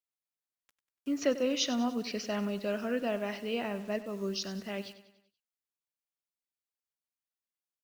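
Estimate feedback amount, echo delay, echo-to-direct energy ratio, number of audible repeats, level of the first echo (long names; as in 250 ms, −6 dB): 50%, 96 ms, −13.5 dB, 4, −14.5 dB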